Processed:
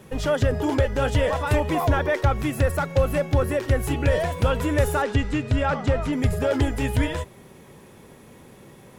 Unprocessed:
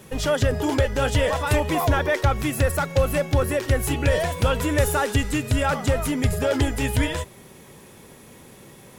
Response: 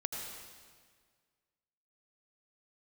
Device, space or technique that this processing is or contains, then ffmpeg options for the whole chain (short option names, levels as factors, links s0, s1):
behind a face mask: -filter_complex "[0:a]highshelf=f=2800:g=-7.5,asettb=1/sr,asplit=3[s0][s1][s2];[s0]atrim=end=5.024[s3];[s1]atrim=start=5.02:end=6.13,asetpts=PTS-STARTPTS,afade=t=in:d=0.004:c=qsin,afade=t=out:st=1.106:d=0.004:c=qsin,lowpass=5600[s4];[s2]atrim=start=6.126[s5];[s3][s4]acrossfade=d=0.004:c1=hsin:c2=qsin[s6];[s6][s5]acrossfade=d=0.004:c1=qsin:c2=hsin"